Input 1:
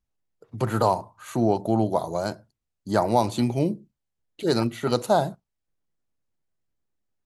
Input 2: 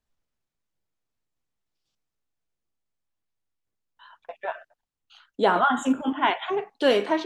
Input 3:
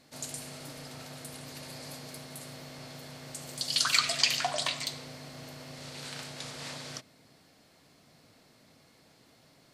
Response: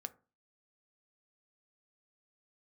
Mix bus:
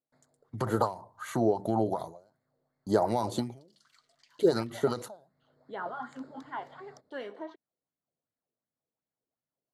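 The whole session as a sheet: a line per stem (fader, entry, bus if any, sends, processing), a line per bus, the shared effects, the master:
−3.0 dB, 0.00 s, no send, downward expander −49 dBFS; downward compressor 6 to 1, threshold −22 dBFS, peak gain reduction 8 dB; every ending faded ahead of time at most 130 dB per second
−20.0 dB, 0.30 s, no send, high-shelf EQ 3,200 Hz −9 dB
−14.0 dB, 0.00 s, no send, adaptive Wiener filter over 15 samples; noise gate with hold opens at −50 dBFS; downward compressor 1.5 to 1, threshold −38 dBFS, peak gain reduction 7 dB; automatic ducking −20 dB, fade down 0.40 s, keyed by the first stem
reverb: not used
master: parametric band 2,500 Hz −13.5 dB 0.24 octaves; auto-filter bell 2.7 Hz 410–2,400 Hz +11 dB

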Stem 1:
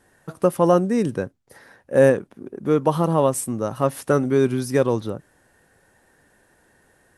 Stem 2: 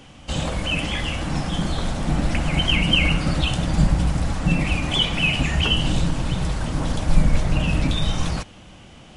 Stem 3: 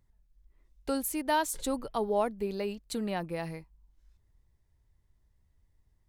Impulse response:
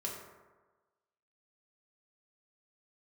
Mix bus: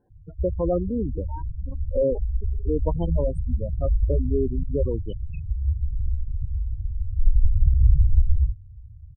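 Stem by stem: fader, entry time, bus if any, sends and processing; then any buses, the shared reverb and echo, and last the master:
−5.5 dB, 0.00 s, no send, high-shelf EQ 6,900 Hz +9.5 dB
−8.0 dB, 0.10 s, no send, low shelf with overshoot 130 Hz +13.5 dB, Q 1.5; automatic ducking −8 dB, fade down 0.65 s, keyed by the first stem
−7.0 dB, 0.00 s, no send, notch filter 640 Hz, Q 13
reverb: not used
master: gate on every frequency bin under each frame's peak −10 dB strong; moving average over 23 samples

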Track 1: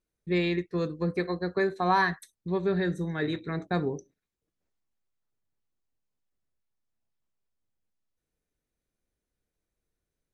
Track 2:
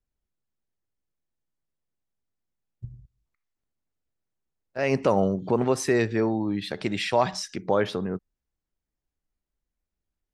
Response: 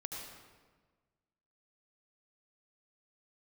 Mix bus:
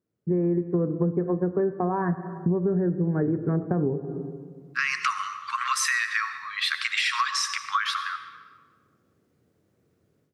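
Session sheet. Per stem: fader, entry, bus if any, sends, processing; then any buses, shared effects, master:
+1.0 dB, 0.00 s, send −11 dB, elliptic band-pass filter 100–1,500 Hz, stop band 40 dB; brickwall limiter −20.5 dBFS, peak gain reduction 7.5 dB; tilt shelving filter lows +7.5 dB, about 910 Hz
+2.0 dB, 0.00 s, send −5.5 dB, Chebyshev high-pass filter 1,100 Hz, order 8; brickwall limiter −25.5 dBFS, peak gain reduction 7.5 dB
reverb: on, RT60 1.4 s, pre-delay 68 ms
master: automatic gain control gain up to 15 dB; high-shelf EQ 2,000 Hz −8.5 dB; downward compressor 12 to 1, threshold −21 dBFS, peak gain reduction 15 dB

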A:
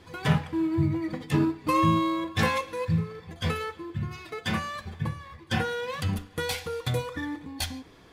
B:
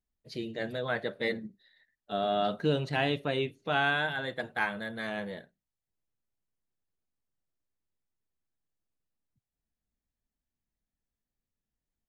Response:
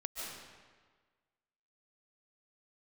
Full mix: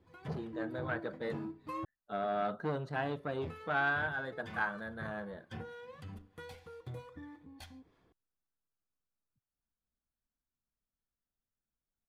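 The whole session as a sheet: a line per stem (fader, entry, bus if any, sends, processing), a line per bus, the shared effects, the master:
−13.0 dB, 0.00 s, muted 0:01.85–0:03.04, no send, high-shelf EQ 2,300 Hz −11 dB; two-band tremolo in antiphase 3.2 Hz, depth 50%, crossover 650 Hz
−5.5 dB, 0.00 s, no send, high shelf with overshoot 1,800 Hz −7 dB, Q 3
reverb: not used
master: saturating transformer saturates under 810 Hz

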